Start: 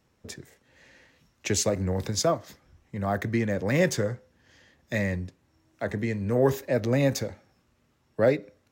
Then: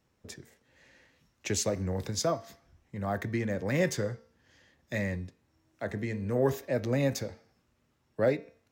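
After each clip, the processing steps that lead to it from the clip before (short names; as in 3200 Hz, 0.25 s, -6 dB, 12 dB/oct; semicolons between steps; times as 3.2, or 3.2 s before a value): de-hum 227.1 Hz, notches 27; gain -4.5 dB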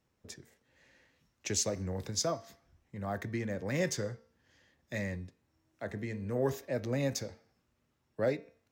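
dynamic EQ 5800 Hz, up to +6 dB, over -50 dBFS, Q 1.3; gain -4.5 dB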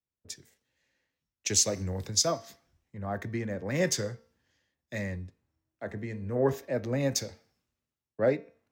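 in parallel at 0 dB: compressor, threshold -42 dBFS, peak gain reduction 16 dB; on the sum: three-band expander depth 70%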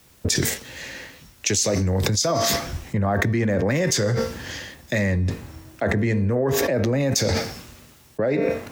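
fast leveller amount 100%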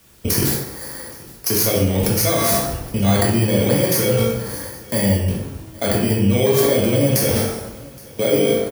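FFT order left unsorted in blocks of 16 samples; echo 0.82 s -23 dB; plate-style reverb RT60 0.87 s, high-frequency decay 0.65×, DRR -2.5 dB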